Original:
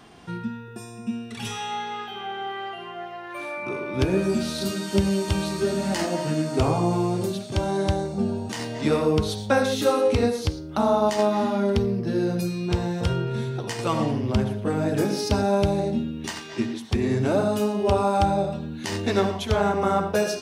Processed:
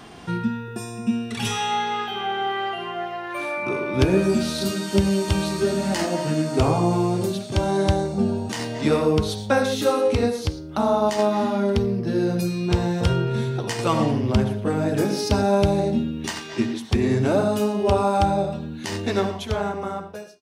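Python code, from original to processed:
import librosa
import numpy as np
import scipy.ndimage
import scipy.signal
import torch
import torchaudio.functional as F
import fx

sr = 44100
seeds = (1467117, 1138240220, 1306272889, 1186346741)

y = fx.fade_out_tail(x, sr, length_s=2.5)
y = fx.rider(y, sr, range_db=4, speed_s=2.0)
y = y * librosa.db_to_amplitude(2.5)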